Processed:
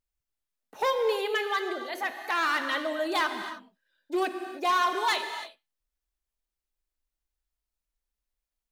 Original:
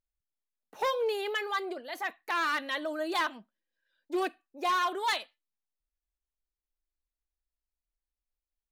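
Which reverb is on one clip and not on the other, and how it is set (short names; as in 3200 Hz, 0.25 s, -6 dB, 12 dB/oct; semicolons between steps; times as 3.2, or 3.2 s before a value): non-linear reverb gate 0.34 s flat, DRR 6.5 dB; gain +2.5 dB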